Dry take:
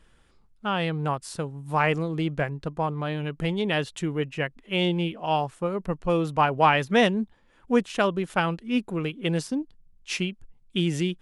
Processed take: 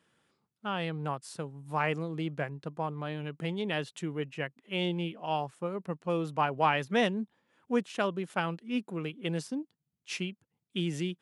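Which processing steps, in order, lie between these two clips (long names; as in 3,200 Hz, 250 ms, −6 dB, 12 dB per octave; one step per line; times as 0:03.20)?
high-pass filter 120 Hz 24 dB per octave
level −7 dB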